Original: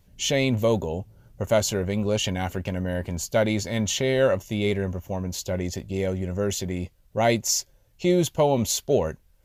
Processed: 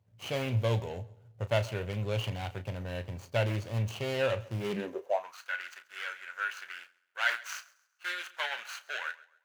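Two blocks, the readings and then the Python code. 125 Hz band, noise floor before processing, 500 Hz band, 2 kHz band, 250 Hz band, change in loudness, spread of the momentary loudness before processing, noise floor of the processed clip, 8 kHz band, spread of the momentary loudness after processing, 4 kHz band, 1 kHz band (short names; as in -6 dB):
-6.0 dB, -60 dBFS, -11.0 dB, -1.0 dB, -15.5 dB, -9.0 dB, 9 LU, -71 dBFS, -20.5 dB, 11 LU, -9.0 dB, -7.0 dB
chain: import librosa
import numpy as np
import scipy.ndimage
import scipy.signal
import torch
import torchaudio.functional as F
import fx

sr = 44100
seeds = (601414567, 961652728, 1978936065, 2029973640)

y = scipy.signal.medfilt(x, 25)
y = scipy.signal.sosfilt(scipy.signal.butter(2, 86.0, 'highpass', fs=sr, output='sos'), y)
y = fx.echo_feedback(y, sr, ms=134, feedback_pct=36, wet_db=-20.5)
y = fx.filter_sweep_highpass(y, sr, from_hz=110.0, to_hz=1500.0, start_s=4.58, end_s=5.4, q=7.1)
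y = fx.peak_eq(y, sr, hz=180.0, db=-14.5, octaves=2.5)
y = fx.doubler(y, sr, ms=34.0, db=-12.0)
y = fx.dynamic_eq(y, sr, hz=2700.0, q=1.5, threshold_db=-51.0, ratio=4.0, max_db=7)
y = y * 10.0 ** (-4.0 / 20.0)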